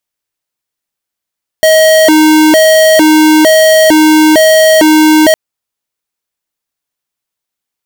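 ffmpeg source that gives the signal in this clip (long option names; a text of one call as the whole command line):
ffmpeg -f lavfi -i "aevalsrc='0.562*(2*lt(mod((471.5*t+161.5/1.1*(0.5-abs(mod(1.1*t,1)-0.5))),1),0.5)-1)':duration=3.71:sample_rate=44100" out.wav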